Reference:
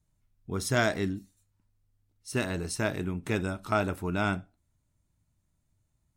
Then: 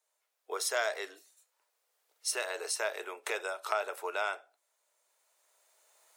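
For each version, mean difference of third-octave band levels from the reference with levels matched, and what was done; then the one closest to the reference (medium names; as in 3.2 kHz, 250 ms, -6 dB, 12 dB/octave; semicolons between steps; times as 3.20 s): 13.0 dB: recorder AGC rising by 9.5 dB/s; steep high-pass 450 Hz 48 dB/octave; compression 2:1, threshold -37 dBFS, peak gain reduction 8.5 dB; trim +3.5 dB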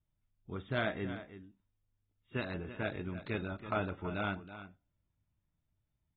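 8.0 dB: treble shelf 6.2 kHz +5.5 dB; on a send: delay 327 ms -13 dB; on the sum: trim -8.5 dB; AAC 16 kbps 32 kHz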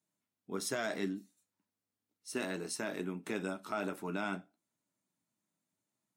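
4.0 dB: flange 1.5 Hz, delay 9.4 ms, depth 1.8 ms, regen -52%; high-pass 200 Hz 24 dB/octave; peak limiter -24 dBFS, peak gain reduction 8.5 dB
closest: third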